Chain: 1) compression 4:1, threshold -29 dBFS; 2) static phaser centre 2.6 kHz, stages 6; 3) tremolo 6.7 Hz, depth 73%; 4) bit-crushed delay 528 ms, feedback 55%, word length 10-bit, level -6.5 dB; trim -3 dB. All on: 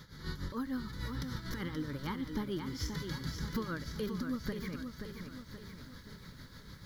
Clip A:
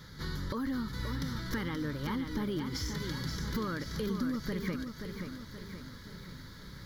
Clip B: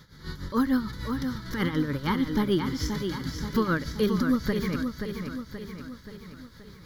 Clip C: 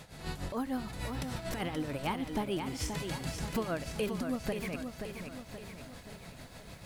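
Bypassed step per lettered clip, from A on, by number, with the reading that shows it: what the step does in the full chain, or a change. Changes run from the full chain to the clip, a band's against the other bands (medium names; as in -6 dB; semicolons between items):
3, crest factor change -2.0 dB; 1, mean gain reduction 6.0 dB; 2, 125 Hz band -4.0 dB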